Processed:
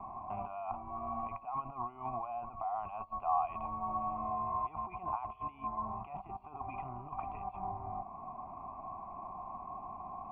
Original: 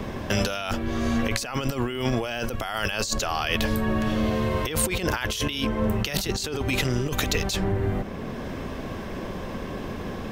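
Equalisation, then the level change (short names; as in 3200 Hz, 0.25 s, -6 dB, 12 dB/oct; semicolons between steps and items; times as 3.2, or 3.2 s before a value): vocal tract filter a; LPF 3400 Hz; fixed phaser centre 2500 Hz, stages 8; +6.0 dB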